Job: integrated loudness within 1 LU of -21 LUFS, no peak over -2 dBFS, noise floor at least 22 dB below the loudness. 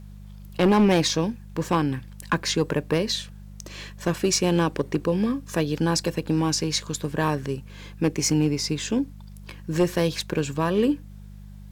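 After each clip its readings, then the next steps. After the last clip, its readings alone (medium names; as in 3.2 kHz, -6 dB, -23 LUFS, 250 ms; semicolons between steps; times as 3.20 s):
clipped samples 0.6%; clipping level -13.0 dBFS; hum 50 Hz; highest harmonic 200 Hz; hum level -40 dBFS; loudness -24.5 LUFS; peak level -13.0 dBFS; loudness target -21.0 LUFS
-> clip repair -13 dBFS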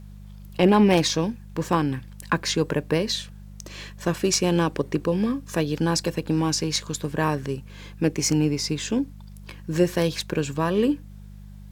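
clipped samples 0.0%; hum 50 Hz; highest harmonic 200 Hz; hum level -40 dBFS
-> de-hum 50 Hz, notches 4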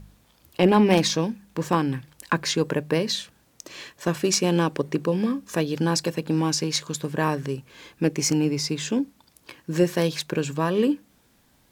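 hum not found; loudness -24.5 LUFS; peak level -6.0 dBFS; loudness target -21.0 LUFS
-> trim +3.5 dB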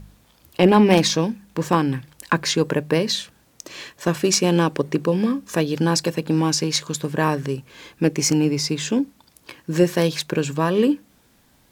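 loudness -21.0 LUFS; peak level -2.5 dBFS; noise floor -58 dBFS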